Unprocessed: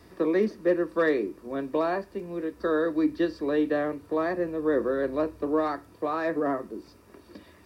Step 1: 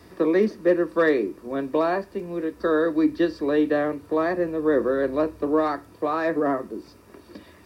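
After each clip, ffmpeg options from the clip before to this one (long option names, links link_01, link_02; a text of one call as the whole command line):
ffmpeg -i in.wav -af "highpass=49,volume=4dB" out.wav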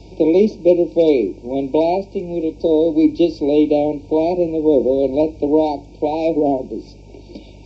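ffmpeg -i in.wav -af "afftfilt=real='re*(1-between(b*sr/4096,950,2200))':imag='im*(1-between(b*sr/4096,950,2200))':win_size=4096:overlap=0.75,aeval=exprs='val(0)+0.00398*(sin(2*PI*50*n/s)+sin(2*PI*2*50*n/s)/2+sin(2*PI*3*50*n/s)/3+sin(2*PI*4*50*n/s)/4+sin(2*PI*5*50*n/s)/5)':channel_layout=same,aresample=16000,aresample=44100,volume=7dB" out.wav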